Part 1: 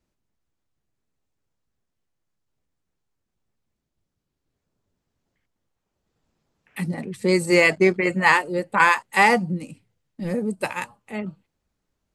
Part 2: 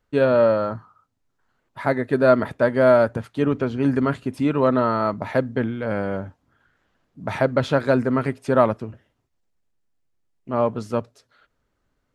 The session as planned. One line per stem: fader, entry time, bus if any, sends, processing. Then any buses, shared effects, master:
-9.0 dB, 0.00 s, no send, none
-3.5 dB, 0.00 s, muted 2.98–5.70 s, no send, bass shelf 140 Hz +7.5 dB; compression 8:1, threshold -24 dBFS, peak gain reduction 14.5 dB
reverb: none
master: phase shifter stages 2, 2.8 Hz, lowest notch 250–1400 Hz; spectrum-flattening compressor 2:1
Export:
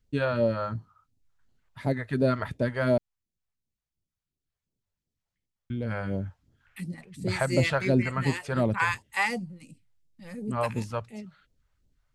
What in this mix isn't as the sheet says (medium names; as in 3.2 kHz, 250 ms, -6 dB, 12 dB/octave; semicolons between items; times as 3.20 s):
stem 2: missing compression 8:1, threshold -24 dBFS, peak gain reduction 14.5 dB; master: missing spectrum-flattening compressor 2:1